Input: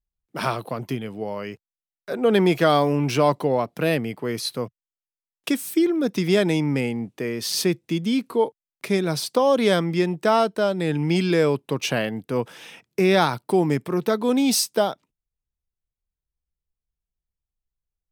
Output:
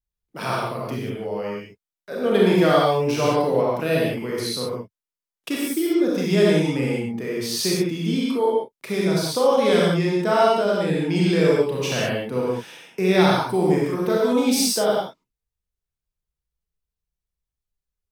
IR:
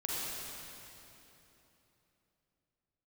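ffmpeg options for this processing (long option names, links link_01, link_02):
-filter_complex "[1:a]atrim=start_sample=2205,afade=type=out:start_time=0.31:duration=0.01,atrim=end_sample=14112,asetrate=57330,aresample=44100[link_01];[0:a][link_01]afir=irnorm=-1:irlink=0"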